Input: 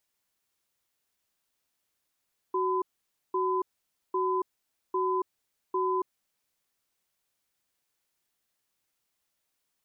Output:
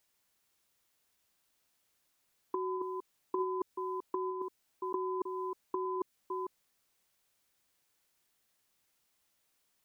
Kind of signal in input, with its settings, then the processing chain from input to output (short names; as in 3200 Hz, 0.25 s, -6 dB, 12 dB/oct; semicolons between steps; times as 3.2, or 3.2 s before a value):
cadence 372 Hz, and 1010 Hz, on 0.28 s, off 0.52 s, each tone -27.5 dBFS 3.80 s
reverse delay 0.308 s, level -11.5 dB; dynamic EQ 910 Hz, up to -5 dB, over -40 dBFS, Q 0.79; negative-ratio compressor -33 dBFS, ratio -0.5